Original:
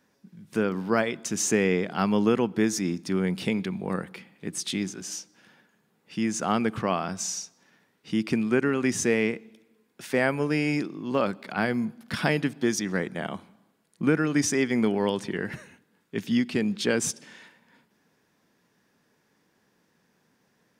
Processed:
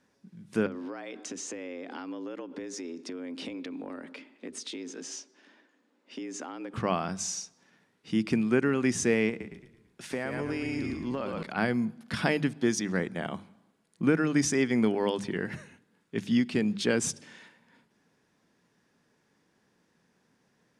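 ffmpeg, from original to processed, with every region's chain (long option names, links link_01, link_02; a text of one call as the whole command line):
ffmpeg -i in.wav -filter_complex "[0:a]asettb=1/sr,asplit=3[link_01][link_02][link_03];[link_01]atrim=end=0.664[link_04];[link_02]atrim=start=0.66:end=6.74,asetpts=PTS-STARTPTS,afade=type=in:duration=0.004:curve=qsin,afade=type=out:start_time=6.076:duration=0.004:curve=qsin,lowpass=6800,acompressor=threshold=-32dB:ratio=16:attack=3.2:release=140:knee=1:detection=peak,afreqshift=77[link_05];[link_03]atrim=start=6.736[link_06];[link_04][link_05]acrossfade=duration=0.004:curve1=hsin:curve2=qsin[link_07];[link_07][link_06]acrossfade=duration=0.004:curve1=qsin:curve2=hsin,asettb=1/sr,asplit=3[link_08][link_09][link_10];[link_08]atrim=end=9.294[link_11];[link_09]atrim=start=9.29:end=11.43,asetpts=PTS-STARTPTS,afade=type=in:duration=0.004:curve=qsin,afade=type=out:start_time=2.136:duration=0.004:curve=qsin,asplit=6[link_12][link_13][link_14][link_15][link_16][link_17];[link_13]adelay=111,afreqshift=-32,volume=-7dB[link_18];[link_14]adelay=222,afreqshift=-64,volume=-14.7dB[link_19];[link_15]adelay=333,afreqshift=-96,volume=-22.5dB[link_20];[link_16]adelay=444,afreqshift=-128,volume=-30.2dB[link_21];[link_17]adelay=555,afreqshift=-160,volume=-38dB[link_22];[link_12][link_18][link_19][link_20][link_21][link_22]amix=inputs=6:normalize=0,atrim=end_sample=94374,acompressor=threshold=-26dB:ratio=6:attack=3.2:release=140:knee=1:detection=peak[link_23];[link_10]atrim=start=11.426[link_24];[link_11][link_23]acrossfade=duration=0.004:curve1=hsin:curve2=qsin[link_25];[link_25][link_24]acrossfade=duration=0.004:curve1=qsin:curve2=hsin,lowpass=frequency=11000:width=0.5412,lowpass=frequency=11000:width=1.3066,lowshelf=frequency=220:gain=3.5,bandreject=frequency=50:width_type=h:width=6,bandreject=frequency=100:width_type=h:width=6,bandreject=frequency=150:width_type=h:width=6,bandreject=frequency=200:width_type=h:width=6,volume=-2.5dB" out.wav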